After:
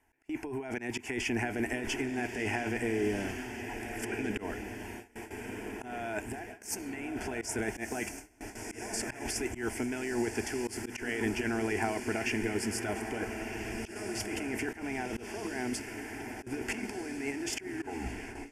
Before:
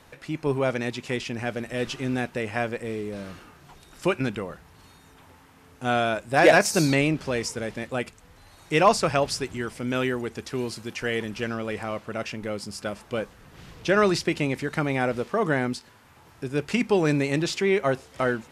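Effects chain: tape stop at the end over 0.92 s; negative-ratio compressor -32 dBFS, ratio -1; fixed phaser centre 800 Hz, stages 8; on a send: diffused feedback echo 1.349 s, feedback 55%, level -7 dB; on the sum: auto swell 0.115 s; gate with hold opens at -32 dBFS

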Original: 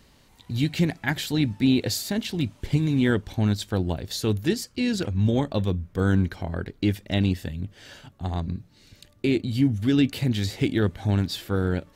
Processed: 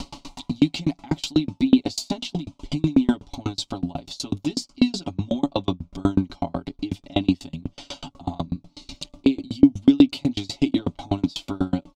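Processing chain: high shelf 4700 Hz +8.5 dB; comb 7.1 ms, depth 92%; in parallel at +1 dB: limiter -13.5 dBFS, peak gain reduction 10 dB; on the sum: upward compressor, threshold -16 dBFS; air absorption 130 m; fixed phaser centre 460 Hz, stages 6; dB-ramp tremolo decaying 8.1 Hz, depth 34 dB; gain +5 dB

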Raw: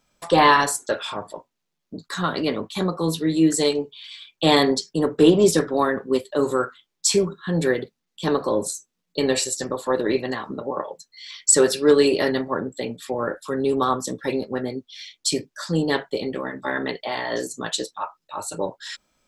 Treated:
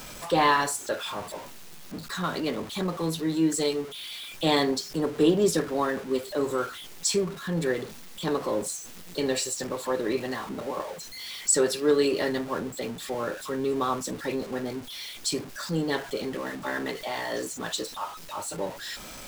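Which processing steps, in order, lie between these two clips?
zero-crossing step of -29 dBFS; gain -7 dB

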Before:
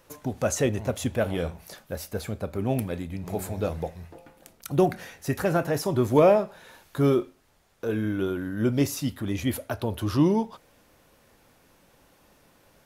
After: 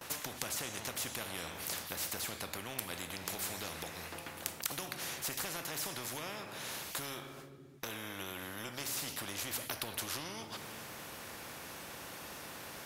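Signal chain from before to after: HPF 110 Hz; gate with hold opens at -51 dBFS; compressor 3:1, threshold -33 dBFS, peak gain reduction 14.5 dB; reverb RT60 1.0 s, pre-delay 4 ms, DRR 13 dB; spectral compressor 4:1; gain +10.5 dB

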